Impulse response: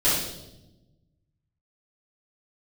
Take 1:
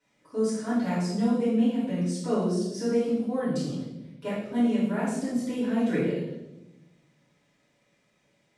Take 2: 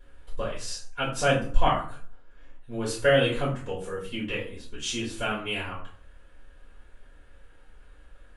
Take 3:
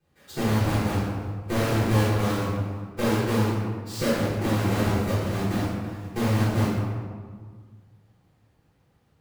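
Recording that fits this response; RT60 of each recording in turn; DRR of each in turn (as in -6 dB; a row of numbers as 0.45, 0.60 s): 1; 0.95, 0.45, 1.7 s; -11.5, -8.0, -13.5 dB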